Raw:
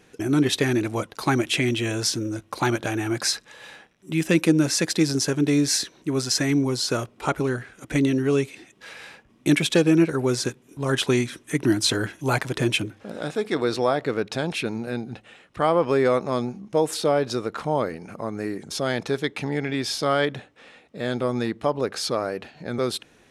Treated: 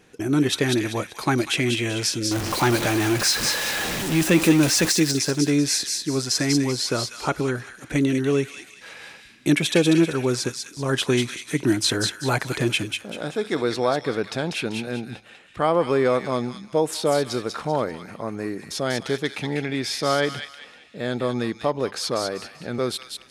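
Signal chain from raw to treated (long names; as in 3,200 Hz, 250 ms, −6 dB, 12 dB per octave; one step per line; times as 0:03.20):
0:02.31–0:04.92: converter with a step at zero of −22 dBFS
delay with a high-pass on its return 194 ms, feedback 33%, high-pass 2,100 Hz, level −3.5 dB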